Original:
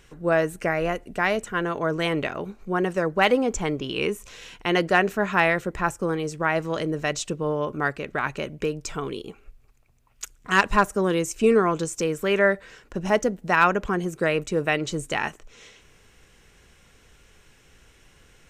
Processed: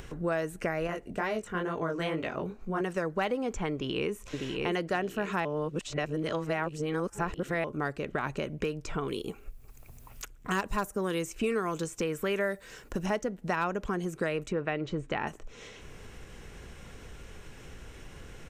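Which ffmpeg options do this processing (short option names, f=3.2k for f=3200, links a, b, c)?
-filter_complex "[0:a]asettb=1/sr,asplit=3[a][b][c];[a]atrim=end=0.874[d];[b]atrim=start=0.87:end=2.81,asetpts=PTS-STARTPTS,afade=t=in:d=0.004:c=qsin,afade=t=out:st=1.936:d=0.004:c=qsin,flanger=delay=17.5:depth=5.3:speed=2.2[e];[c]atrim=start=2.806[f];[d][e]acrossfade=d=0.004:c1=hsin:c2=qsin[g];[g][f]acrossfade=d=0.004:c1=qsin:c2=hsin,asplit=2[h][i];[i]afade=t=in:st=3.73:d=0.01,afade=t=out:st=4.15:d=0.01,aecho=0:1:600|1200|1800|2400|3000|3600|4200:0.473151|0.260233|0.143128|0.0787205|0.0432963|0.023813|0.0130971[j];[h][j]amix=inputs=2:normalize=0,asettb=1/sr,asplit=3[k][l][m];[k]atrim=end=9.084[n];[l]atrim=start=9.08:end=13.06,asetpts=PTS-STARTPTS,afade=t=in:d=0.004:c=qsin,afade=t=out:st=3.976:d=0.004:c=qsin,aemphasis=mode=production:type=50fm[o];[m]atrim=start=13.056[p];[n][o]acrossfade=d=0.004:c1=hsin:c2=qsin[q];[q][p]acrossfade=d=0.004:c1=qsin:c2=hsin,asettb=1/sr,asplit=3[r][s][t];[r]atrim=end=14.524[u];[s]atrim=start=14.52:end=15.27,asetpts=PTS-STARTPTS,afade=t=in:d=0.004:c=qsin,afade=t=out:st=0.746:d=0.004:c=qsin,lowpass=2.7k[v];[t]atrim=start=15.266[w];[u][v]acrossfade=d=0.004:c1=hsin:c2=qsin[x];[x][w]acrossfade=d=0.004:c1=qsin:c2=hsin,asplit=3[y][z][aa];[y]atrim=end=5.452[ab];[z]atrim=start=5.448:end=7.642,asetpts=PTS-STARTPTS,areverse[ac];[aa]atrim=start=7.638[ad];[ab][ac]acrossfade=d=0.004:c1=hsin:c2=hsin[ae];[ae][ad]acrossfade=d=0.004:c1=hsin:c2=hsin,acompressor=mode=upward:threshold=-40dB:ratio=2.5,tiltshelf=f=1.3k:g=4,acrossover=split=1100|3500[af][ag][ah];[af]acompressor=threshold=-31dB:ratio=4[ai];[ag]acompressor=threshold=-37dB:ratio=4[aj];[ah]acompressor=threshold=-47dB:ratio=4[ak];[ai][aj][ak]amix=inputs=3:normalize=0"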